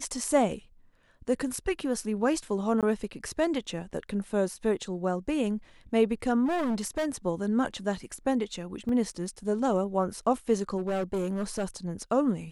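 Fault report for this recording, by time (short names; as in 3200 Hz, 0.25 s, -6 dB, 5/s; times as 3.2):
2.81–2.83 gap 17 ms
6.45–7.09 clipped -25.5 dBFS
8.89 gap 2.5 ms
10.77–11.64 clipped -25.5 dBFS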